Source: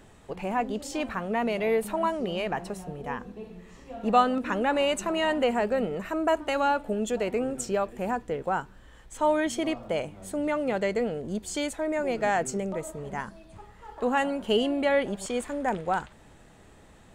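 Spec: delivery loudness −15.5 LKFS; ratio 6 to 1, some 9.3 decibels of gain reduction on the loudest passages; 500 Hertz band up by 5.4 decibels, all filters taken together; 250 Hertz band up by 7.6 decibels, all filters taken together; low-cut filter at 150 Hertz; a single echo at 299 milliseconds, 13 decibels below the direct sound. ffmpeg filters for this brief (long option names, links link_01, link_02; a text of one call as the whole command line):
ffmpeg -i in.wav -af "highpass=150,equalizer=frequency=250:width_type=o:gain=8.5,equalizer=frequency=500:width_type=o:gain=4.5,acompressor=threshold=-24dB:ratio=6,aecho=1:1:299:0.224,volume=13.5dB" out.wav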